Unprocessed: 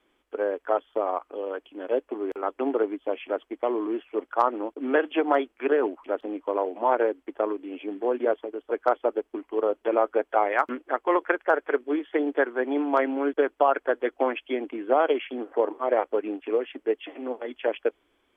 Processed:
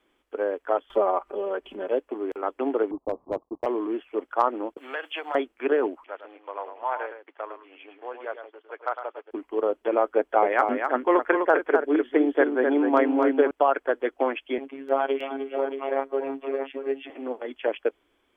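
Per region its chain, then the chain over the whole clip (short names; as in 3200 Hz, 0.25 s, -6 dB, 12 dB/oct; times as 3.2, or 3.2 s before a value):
0.9–1.89 tilt -1.5 dB/oct + comb 5.1 ms, depth 100% + upward compressor, threshold -33 dBFS
2.91–3.66 block floating point 3-bit + Chebyshev low-pass 1100 Hz, order 6 + hard clip -19 dBFS
4.77–5.35 tilt +3.5 dB/oct + compressor 2.5:1, threshold -28 dBFS + HPF 550 Hz
6.04–9.31 HPF 980 Hz + air absorption 160 m + echo 0.106 s -9 dB
10.17–13.51 low shelf 430 Hz +5.5 dB + echo 0.255 s -5.5 dB
14.58–17.1 robotiser 136 Hz + tapped delay 0.306/0.625 s -11/-8.5 dB
whole clip: dry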